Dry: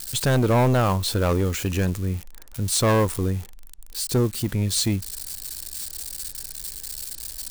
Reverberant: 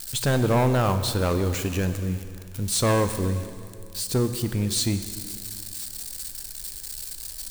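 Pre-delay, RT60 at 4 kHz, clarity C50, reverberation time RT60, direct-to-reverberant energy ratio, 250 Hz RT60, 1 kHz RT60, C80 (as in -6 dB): 12 ms, 2.2 s, 10.0 dB, 2.4 s, 9.0 dB, 2.6 s, 2.3 s, 11.0 dB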